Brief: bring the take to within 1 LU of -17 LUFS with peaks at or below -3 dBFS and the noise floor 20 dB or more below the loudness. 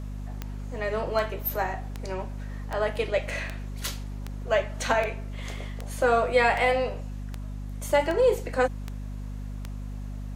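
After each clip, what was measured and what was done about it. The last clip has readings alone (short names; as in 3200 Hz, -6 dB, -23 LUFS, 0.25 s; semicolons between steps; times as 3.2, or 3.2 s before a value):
clicks 13; hum 50 Hz; harmonics up to 250 Hz; hum level -32 dBFS; loudness -28.5 LUFS; peak -10.0 dBFS; loudness target -17.0 LUFS
-> de-click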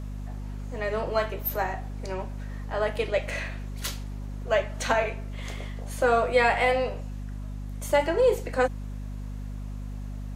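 clicks 0; hum 50 Hz; harmonics up to 250 Hz; hum level -32 dBFS
-> notches 50/100/150/200/250 Hz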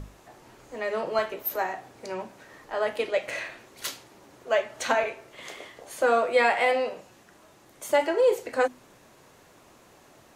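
hum none; loudness -27.0 LUFS; peak -9.5 dBFS; loudness target -17.0 LUFS
-> gain +10 dB; limiter -3 dBFS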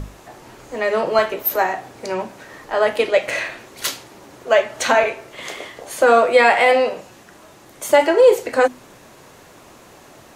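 loudness -17.5 LUFS; peak -3.0 dBFS; noise floor -46 dBFS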